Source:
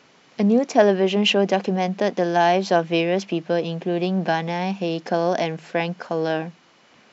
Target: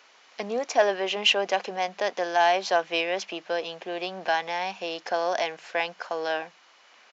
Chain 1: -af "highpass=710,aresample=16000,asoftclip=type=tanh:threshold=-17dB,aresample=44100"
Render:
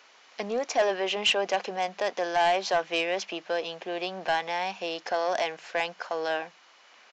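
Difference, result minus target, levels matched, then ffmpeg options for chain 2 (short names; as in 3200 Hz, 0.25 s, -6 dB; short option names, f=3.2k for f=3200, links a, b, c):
soft clip: distortion +13 dB
-af "highpass=710,aresample=16000,asoftclip=type=tanh:threshold=-7.5dB,aresample=44100"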